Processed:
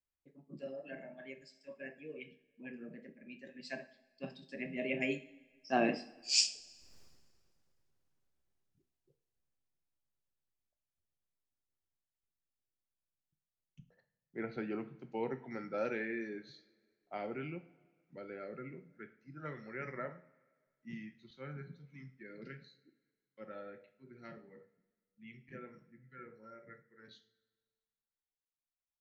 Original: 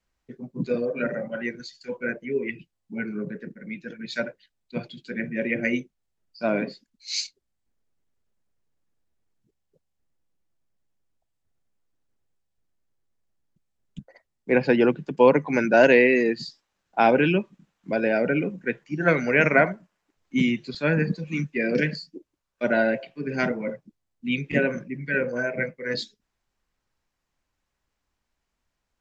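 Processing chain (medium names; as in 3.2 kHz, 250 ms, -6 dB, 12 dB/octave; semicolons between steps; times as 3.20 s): Doppler pass-by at 6.99 s, 38 m/s, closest 3.2 m; two-slope reverb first 0.41 s, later 1.7 s, from -18 dB, DRR 8 dB; trim +18 dB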